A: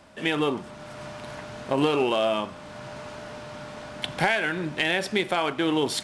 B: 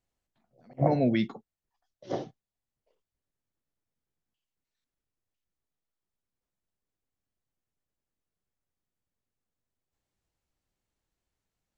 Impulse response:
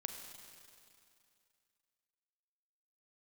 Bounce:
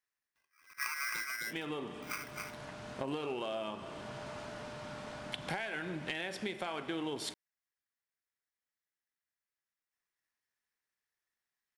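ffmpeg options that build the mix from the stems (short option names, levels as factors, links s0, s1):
-filter_complex "[0:a]adelay=1300,volume=0.355,asplit=2[s0][s1];[s1]volume=0.668[s2];[1:a]highpass=50,aeval=exprs='val(0)*sgn(sin(2*PI*1800*n/s))':c=same,volume=0.501,asplit=3[s3][s4][s5];[s4]volume=0.531[s6];[s5]apad=whole_len=323661[s7];[s0][s7]sidechaincompress=threshold=0.00891:ratio=8:attack=9.4:release=1270[s8];[2:a]atrim=start_sample=2205[s9];[s2][s9]afir=irnorm=-1:irlink=0[s10];[s6]aecho=0:1:264:1[s11];[s8][s3][s10][s11]amix=inputs=4:normalize=0,acompressor=threshold=0.0158:ratio=4"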